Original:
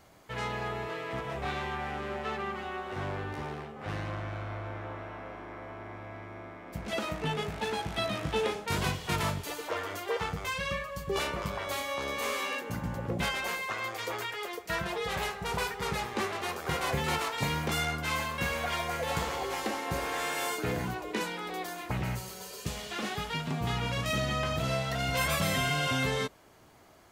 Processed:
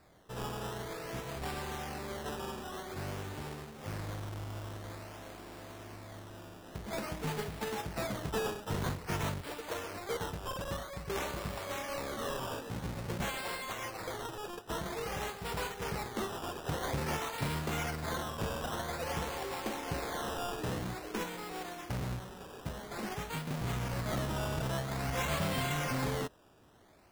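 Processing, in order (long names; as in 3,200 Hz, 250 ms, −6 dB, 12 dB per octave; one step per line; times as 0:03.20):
each half-wave held at its own peak
sample-and-hold swept by an LFO 14×, swing 100% 0.5 Hz
level −9 dB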